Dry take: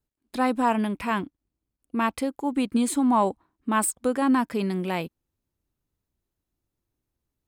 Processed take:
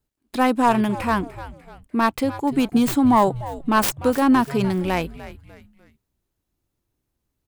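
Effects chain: tracing distortion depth 0.24 ms; frequency-shifting echo 297 ms, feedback 38%, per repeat -130 Hz, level -15 dB; 1.02–2.03 s: dynamic bell 3.1 kHz, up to -4 dB, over -45 dBFS, Q 0.85; trim +5 dB

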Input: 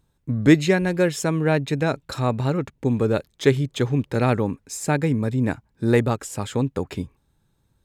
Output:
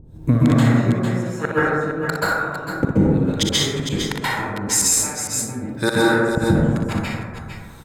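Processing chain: harmonic tremolo 1.1 Hz, depth 100%, crossover 600 Hz; inverted gate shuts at -27 dBFS, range -36 dB; multi-tap echo 41/60/449/458 ms -13/-7/-14/-10.5 dB; plate-style reverb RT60 1.4 s, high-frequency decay 0.3×, pre-delay 120 ms, DRR -9 dB; loudness maximiser +27.5 dB; trim -5.5 dB

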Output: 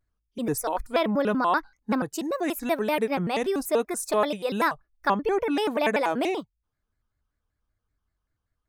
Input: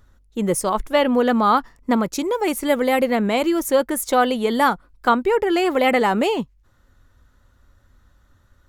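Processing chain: spectral noise reduction 17 dB; vibrato with a chosen wave square 5.2 Hz, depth 250 cents; trim -6.5 dB

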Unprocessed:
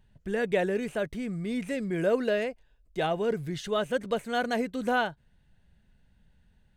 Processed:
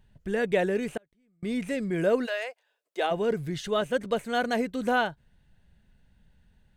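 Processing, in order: 0.97–1.43 s: inverted gate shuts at -29 dBFS, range -36 dB; 2.25–3.10 s: high-pass 770 Hz -> 320 Hz 24 dB/octave; 3.81–4.24 s: expander -35 dBFS; trim +1.5 dB

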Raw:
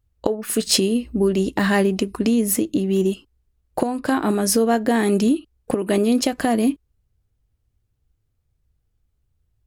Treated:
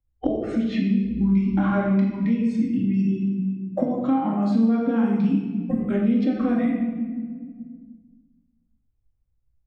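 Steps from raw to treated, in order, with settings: spectral noise reduction 26 dB; formant shift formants -4 st; tape spacing loss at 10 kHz 44 dB; simulated room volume 650 m³, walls mixed, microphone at 2.2 m; three bands compressed up and down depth 70%; trim -5.5 dB

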